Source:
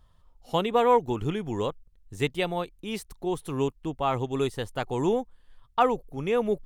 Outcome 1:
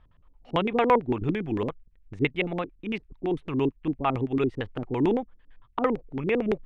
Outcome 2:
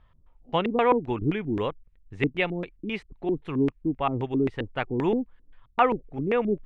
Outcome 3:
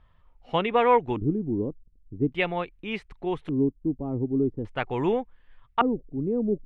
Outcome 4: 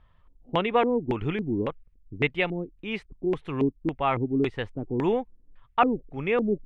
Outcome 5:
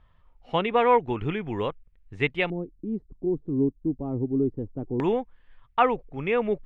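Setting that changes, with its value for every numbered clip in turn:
LFO low-pass, rate: 8.9, 3.8, 0.43, 1.8, 0.2 Hz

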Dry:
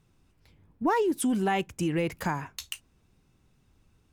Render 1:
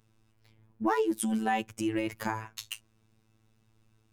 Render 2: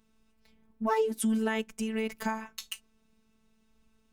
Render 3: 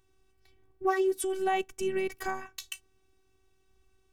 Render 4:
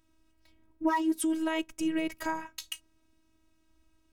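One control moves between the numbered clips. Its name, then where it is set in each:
robotiser, frequency: 110, 220, 380, 320 Hz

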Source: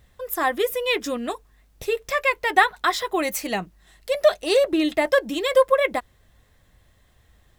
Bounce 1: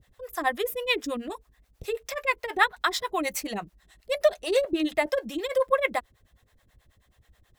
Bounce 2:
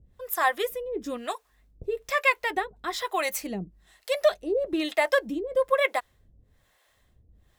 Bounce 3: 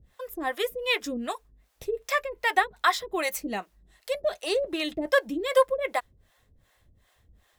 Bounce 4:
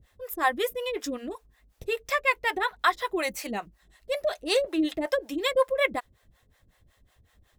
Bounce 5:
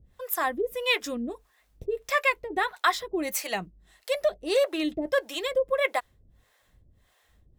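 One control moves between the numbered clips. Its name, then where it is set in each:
harmonic tremolo, rate: 9.3, 1.1, 2.6, 5.4, 1.6 Hz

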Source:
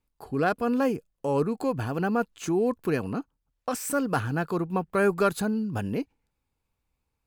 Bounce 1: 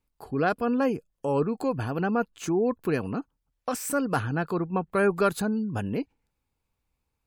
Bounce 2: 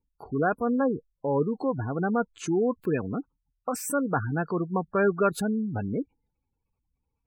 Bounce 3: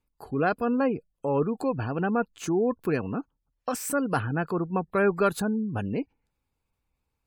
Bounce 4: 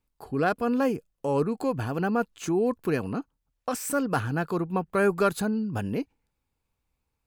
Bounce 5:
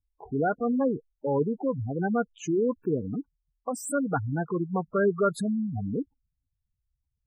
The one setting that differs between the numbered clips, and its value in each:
spectral gate, under each frame's peak: -45, -20, -35, -60, -10 dB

